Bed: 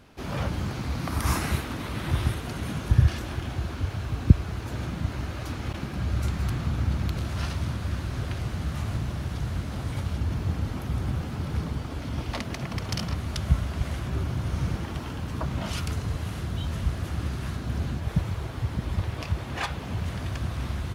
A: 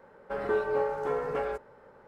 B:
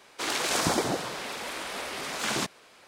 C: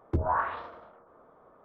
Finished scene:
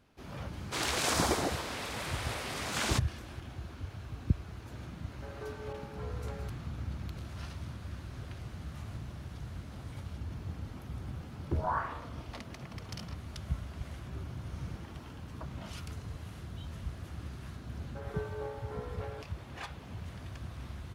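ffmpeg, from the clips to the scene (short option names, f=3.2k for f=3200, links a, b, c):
-filter_complex "[1:a]asplit=2[a][b];[0:a]volume=-12.5dB[c];[2:a]atrim=end=2.87,asetpts=PTS-STARTPTS,volume=-3.5dB,afade=t=in:d=0.004:c=hsin,afade=t=out:st=2.866:d=0.004:c=hsin,adelay=530[d];[a]atrim=end=2.07,asetpts=PTS-STARTPTS,volume=-15.5dB,afade=t=in:d=0.004:c=hsin,afade=t=out:st=2.066:d=0.004:c=hsin,adelay=4920[e];[3:a]atrim=end=1.64,asetpts=PTS-STARTPTS,volume=-5dB,afade=t=in:d=0.004:c=hsin,afade=t=out:st=1.636:d=0.004:c=hsin,adelay=501858S[f];[b]atrim=end=2.07,asetpts=PTS-STARTPTS,volume=-12.5dB,afade=t=in:d=0.004:c=hsin,afade=t=out:st=2.066:d=0.004:c=hsin,adelay=17650[g];[c][d][e][f][g]amix=inputs=5:normalize=0"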